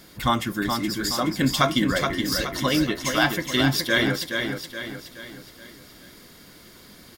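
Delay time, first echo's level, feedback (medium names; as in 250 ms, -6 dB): 422 ms, -5.5 dB, 45%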